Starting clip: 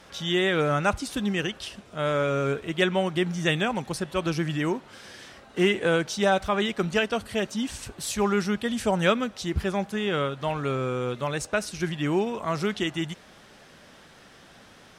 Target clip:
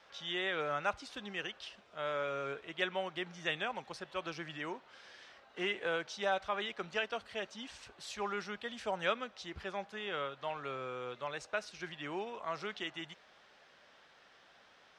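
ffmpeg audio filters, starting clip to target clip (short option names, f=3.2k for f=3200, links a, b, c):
-filter_complex "[0:a]acrossover=split=460 5800:gain=0.2 1 0.0891[a][b][c];[a][b][c]amix=inputs=3:normalize=0,volume=-9dB"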